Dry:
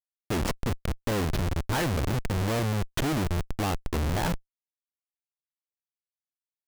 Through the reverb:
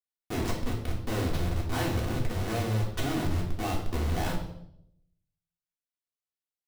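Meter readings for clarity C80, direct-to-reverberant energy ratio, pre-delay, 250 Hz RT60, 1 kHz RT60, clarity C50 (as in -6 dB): 9.0 dB, -3.0 dB, 3 ms, 0.85 s, 0.65 s, 5.5 dB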